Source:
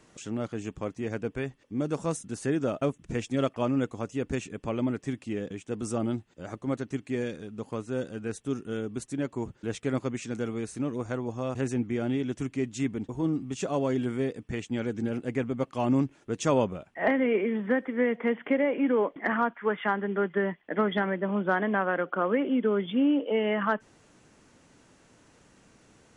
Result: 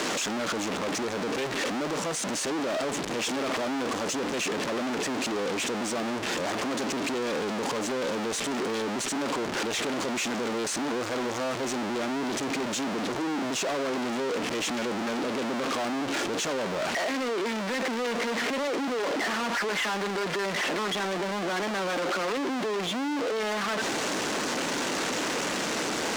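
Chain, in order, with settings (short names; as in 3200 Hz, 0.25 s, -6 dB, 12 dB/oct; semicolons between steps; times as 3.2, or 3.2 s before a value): infinite clipping; three-band isolator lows -23 dB, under 220 Hz, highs -21 dB, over 8000 Hz; sample leveller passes 1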